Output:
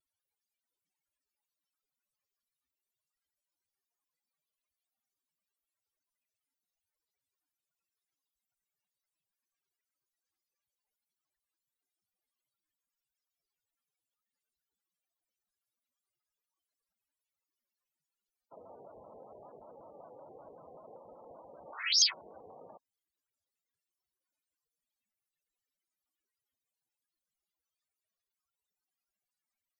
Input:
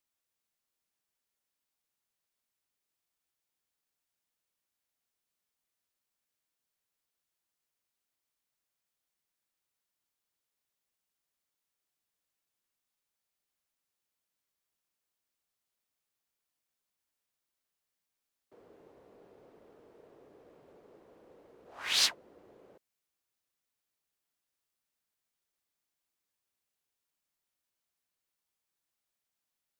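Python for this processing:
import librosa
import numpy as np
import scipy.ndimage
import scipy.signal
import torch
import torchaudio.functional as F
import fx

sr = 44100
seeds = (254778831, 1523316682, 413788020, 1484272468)

y = fx.spec_topn(x, sr, count=32)
y = fx.formant_shift(y, sr, semitones=5)
y = fx.vibrato_shape(y, sr, shape='square', rate_hz=5.2, depth_cents=160.0)
y = y * 10.0 ** (6.5 / 20.0)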